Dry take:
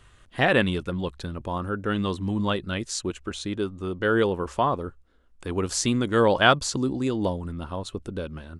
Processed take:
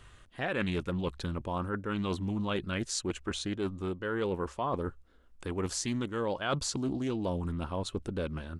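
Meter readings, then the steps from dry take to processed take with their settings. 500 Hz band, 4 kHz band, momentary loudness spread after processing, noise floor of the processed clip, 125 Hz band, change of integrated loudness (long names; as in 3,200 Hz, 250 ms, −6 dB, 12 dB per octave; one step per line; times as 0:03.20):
−9.0 dB, −8.5 dB, 4 LU, −58 dBFS, −5.5 dB, −8.0 dB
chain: reversed playback
downward compressor 8 to 1, threshold −29 dBFS, peak gain reduction 16.5 dB
reversed playback
highs frequency-modulated by the lows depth 0.2 ms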